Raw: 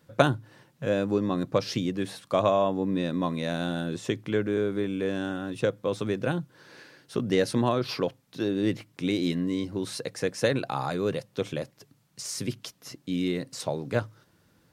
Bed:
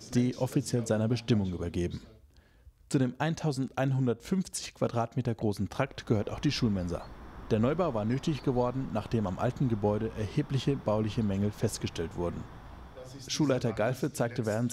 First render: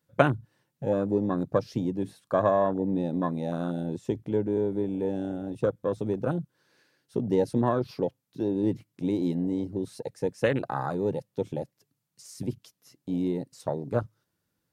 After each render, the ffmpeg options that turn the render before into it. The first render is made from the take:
-af "afwtdn=0.0316,highshelf=f=6.9k:g=9"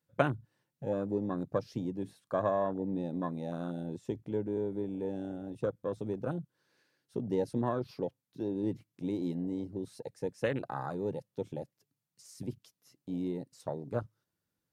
-af "volume=-7dB"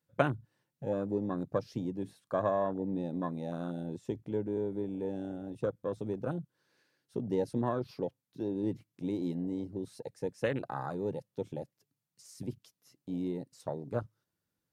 -af anull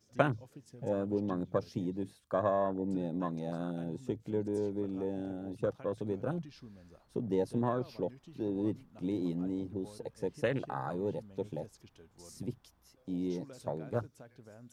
-filter_complex "[1:a]volume=-23.5dB[a];[0:a][a]amix=inputs=2:normalize=0"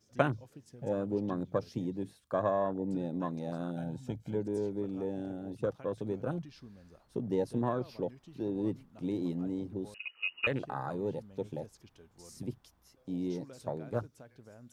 -filter_complex "[0:a]asettb=1/sr,asplit=3[a][b][c];[a]atrim=end=3.764[d];[b]atrim=start=3.76:end=4.35,asetpts=PTS-STARTPTS,afade=t=in:d=0.004:c=qsin,afade=t=out:st=0.586:d=0.004:c=qsin,aecho=1:1:1.3:0.65,atrim=end_sample=26019[e];[c]atrim=start=4.346[f];[d][e]acrossfade=d=0.004:c1=hsin:c2=qsin[g];[g][f]acrossfade=d=0.004:c1=qsin:c2=hsin,asettb=1/sr,asplit=3[h][i][j];[h]atrim=end=9.944[k];[i]atrim=start=9.94:end=10.47,asetpts=PTS-STARTPTS,afade=t=in:d=0.004:c=qsin,afade=t=out:st=0.526:d=0.004:c=qsin,lowpass=f=2.6k:t=q:w=0.5098,lowpass=f=2.6k:t=q:w=0.6013,lowpass=f=2.6k:t=q:w=0.9,lowpass=f=2.6k:t=q:w=2.563,afreqshift=-3000[l];[j]atrim=start=10.466[m];[k][l]acrossfade=d=0.004:c1=hsin:c2=qsin[n];[n][m]acrossfade=d=0.004:c1=qsin:c2=hsin"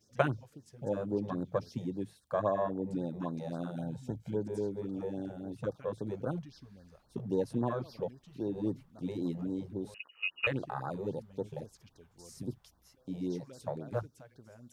-af "afftfilt=real='re*(1-between(b*sr/1024,240*pow(2700/240,0.5+0.5*sin(2*PI*3.7*pts/sr))/1.41,240*pow(2700/240,0.5+0.5*sin(2*PI*3.7*pts/sr))*1.41))':imag='im*(1-between(b*sr/1024,240*pow(2700/240,0.5+0.5*sin(2*PI*3.7*pts/sr))/1.41,240*pow(2700/240,0.5+0.5*sin(2*PI*3.7*pts/sr))*1.41))':win_size=1024:overlap=0.75"

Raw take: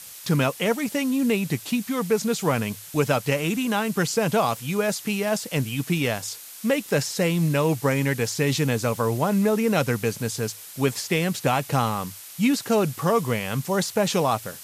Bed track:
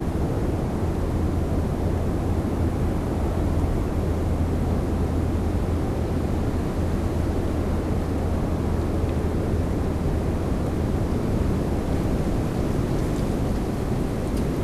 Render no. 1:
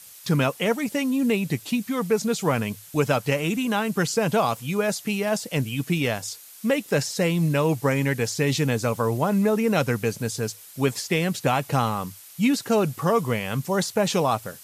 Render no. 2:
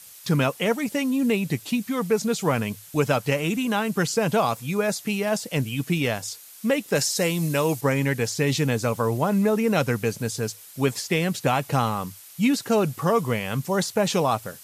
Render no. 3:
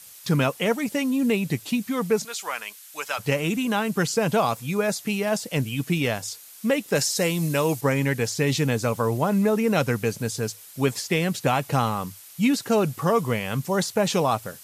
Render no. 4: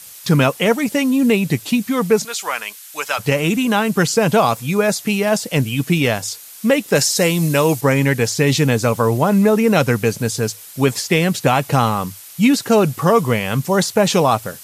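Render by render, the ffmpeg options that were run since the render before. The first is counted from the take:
-af "afftdn=nr=6:nf=-42"
-filter_complex "[0:a]asettb=1/sr,asplit=3[a][b][c];[a]atrim=end=4.494[d];[b]atrim=start=4.49:end=5,asetpts=PTS-STARTPTS,afade=t=in:d=0.004:c=qsin,afade=t=out:st=0.506:d=0.004:c=qsin,bandreject=f=3k:w=10[e];[c]atrim=start=4.996[f];[d][e]acrossfade=d=0.004:c1=hsin:c2=qsin[g];[g][f]acrossfade=d=0.004:c1=qsin:c2=hsin,asettb=1/sr,asplit=3[h][i][j];[h]atrim=end=6.954[k];[i]atrim=start=6.95:end=7.81,asetpts=PTS-STARTPTS,afade=t=in:d=0.004:c=qsin,afade=t=out:st=0.856:d=0.004:c=qsin,bass=f=250:g=-4,treble=f=4k:g=7[l];[j]atrim=start=7.806[m];[k][l]acrossfade=d=0.004:c1=hsin:c2=qsin[n];[n][m]acrossfade=d=0.004:c1=qsin:c2=hsin"
-filter_complex "[0:a]asplit=3[a][b][c];[a]afade=t=out:st=2.23:d=0.02[d];[b]highpass=1.1k,afade=t=in:st=2.23:d=0.02,afade=t=out:st=3.18:d=0.02[e];[c]afade=t=in:st=3.18:d=0.02[f];[d][e][f]amix=inputs=3:normalize=0"
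-af "volume=7.5dB,alimiter=limit=-3dB:level=0:latency=1"

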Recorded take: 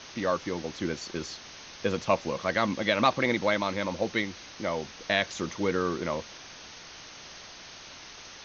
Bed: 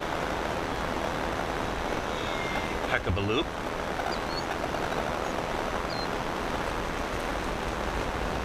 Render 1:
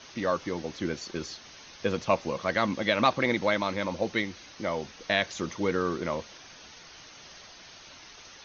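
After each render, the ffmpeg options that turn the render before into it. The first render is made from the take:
-af "afftdn=nr=6:nf=-47"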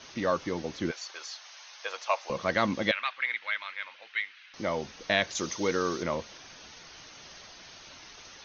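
-filter_complex "[0:a]asettb=1/sr,asplit=3[a][b][c];[a]atrim=end=0.914[d];[b]atrim=start=0.91:end=2.3,asetpts=PTS-STARTPTS,afade=t=in:d=0.004:c=qsin,afade=t=out:st=1.386:d=0.004:c=qsin,highpass=f=690:w=0.5412,highpass=f=690:w=1.3066[e];[c]atrim=start=2.296[f];[d][e]acrossfade=d=0.004:c1=hsin:c2=qsin[g];[g][f]acrossfade=d=0.004:c1=qsin:c2=hsin,asettb=1/sr,asplit=3[h][i][j];[h]atrim=end=2.914[k];[i]atrim=start=2.91:end=4.54,asetpts=PTS-STARTPTS,afade=t=in:d=0.004:c=qsin,afade=t=out:st=1.626:d=0.004:c=qsin,asuperpass=centerf=2200:order=4:qfactor=1.2[l];[j]atrim=start=4.536[m];[k][l]acrossfade=d=0.004:c1=hsin:c2=qsin[n];[n][m]acrossfade=d=0.004:c1=qsin:c2=hsin,asettb=1/sr,asplit=3[o][p][q];[o]atrim=end=5.354[r];[p]atrim=start=5.35:end=6.03,asetpts=PTS-STARTPTS,afade=t=in:d=0.004:c=qsin,afade=t=out:st=0.676:d=0.004:c=qsin,bass=f=250:g=-5,treble=f=4k:g=11[s];[q]atrim=start=6.026[t];[r][s]acrossfade=d=0.004:c1=hsin:c2=qsin[u];[u][t]acrossfade=d=0.004:c1=qsin:c2=hsin"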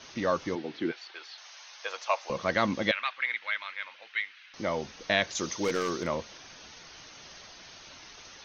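-filter_complex "[0:a]asettb=1/sr,asplit=3[a][b][c];[a]atrim=end=0.554[d];[b]atrim=start=0.55:end=1.38,asetpts=PTS-STARTPTS,afade=t=in:d=0.004:c=qsin,afade=t=out:st=0.826:d=0.004:c=qsin,highpass=f=140:w=0.5412,highpass=f=140:w=1.3066,equalizer=f=180:t=q:w=4:g=-8,equalizer=f=340:t=q:w=4:g=4,equalizer=f=560:t=q:w=4:g=-8,equalizer=f=1.1k:t=q:w=4:g=-6,lowpass=f=4.1k:w=0.5412,lowpass=f=4.1k:w=1.3066[e];[c]atrim=start=1.376[f];[d][e]acrossfade=d=0.004:c1=hsin:c2=qsin[g];[g][f]acrossfade=d=0.004:c1=qsin:c2=hsin,asettb=1/sr,asplit=3[h][i][j];[h]atrim=end=5.644[k];[i]atrim=start=5.64:end=6.07,asetpts=PTS-STARTPTS,afade=t=in:d=0.004:c=qsin,afade=t=out:st=0.426:d=0.004:c=qsin,aeval=exprs='0.0944*(abs(mod(val(0)/0.0944+3,4)-2)-1)':c=same[l];[j]atrim=start=6.066[m];[k][l]acrossfade=d=0.004:c1=hsin:c2=qsin[n];[n][m]acrossfade=d=0.004:c1=qsin:c2=hsin"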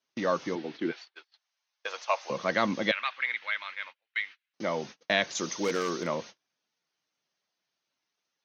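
-af "agate=range=-35dB:threshold=-42dB:ratio=16:detection=peak,highpass=f=130:w=0.5412,highpass=f=130:w=1.3066"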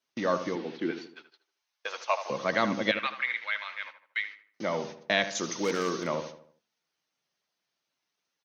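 -filter_complex "[0:a]asplit=2[a][b];[b]adelay=77,lowpass=f=1.9k:p=1,volume=-9.5dB,asplit=2[c][d];[d]adelay=77,lowpass=f=1.9k:p=1,volume=0.45,asplit=2[e][f];[f]adelay=77,lowpass=f=1.9k:p=1,volume=0.45,asplit=2[g][h];[h]adelay=77,lowpass=f=1.9k:p=1,volume=0.45,asplit=2[i][j];[j]adelay=77,lowpass=f=1.9k:p=1,volume=0.45[k];[a][c][e][g][i][k]amix=inputs=6:normalize=0"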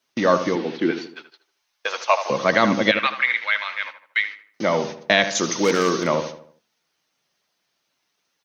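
-af "volume=10dB,alimiter=limit=-3dB:level=0:latency=1"

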